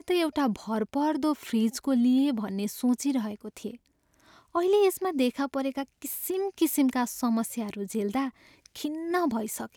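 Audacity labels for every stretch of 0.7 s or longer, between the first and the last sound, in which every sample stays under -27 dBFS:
3.670000	4.550000	silence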